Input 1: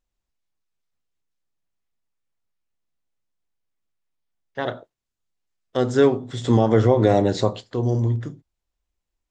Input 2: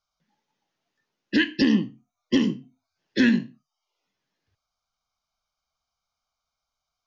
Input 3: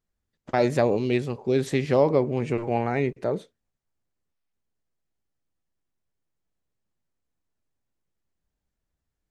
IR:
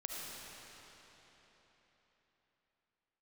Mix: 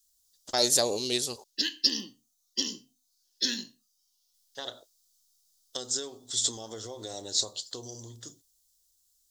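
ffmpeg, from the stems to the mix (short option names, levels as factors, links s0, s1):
-filter_complex "[0:a]acompressor=threshold=0.0501:ratio=5,volume=0.316[s0];[1:a]adelay=250,volume=0.188[s1];[2:a]volume=0.531,asplit=3[s2][s3][s4];[s2]atrim=end=1.44,asetpts=PTS-STARTPTS,afade=t=out:st=1.436:d=0.004:c=hsin[s5];[s3]atrim=start=1.44:end=4.34,asetpts=PTS-STARTPTS,volume=0[s6];[s4]atrim=start=4.34,asetpts=PTS-STARTPTS,afade=t=in:d=0.004:c=hsin[s7];[s5][s6][s7]concat=n=3:v=0:a=1[s8];[s0][s1][s8]amix=inputs=3:normalize=0,equalizer=f=150:w=1.1:g=-13,aexciter=amount=8.9:drive=9.5:freq=3600"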